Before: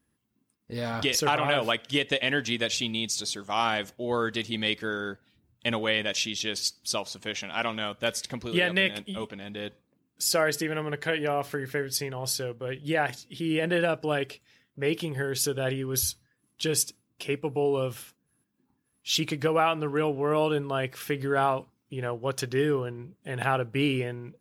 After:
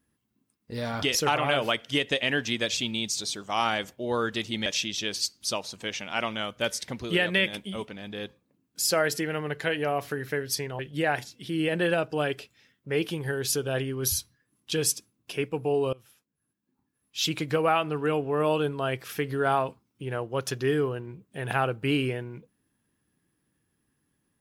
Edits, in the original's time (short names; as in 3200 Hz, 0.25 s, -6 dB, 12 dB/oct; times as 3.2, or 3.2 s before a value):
4.66–6.08 cut
12.21–12.7 cut
17.84–19.37 fade in, from -23.5 dB